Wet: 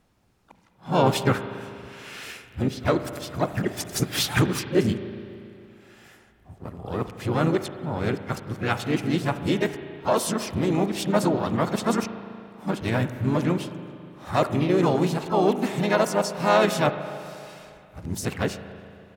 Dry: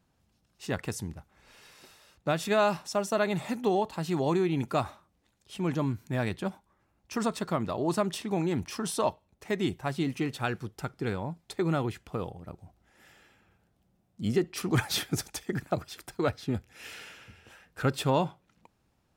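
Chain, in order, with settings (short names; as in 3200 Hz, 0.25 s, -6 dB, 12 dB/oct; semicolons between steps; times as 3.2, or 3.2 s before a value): whole clip reversed; harmoniser -3 st -7 dB, +3 st -13 dB, +7 st -11 dB; spring tank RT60 2.6 s, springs 35/40 ms, chirp 60 ms, DRR 10 dB; gain +4.5 dB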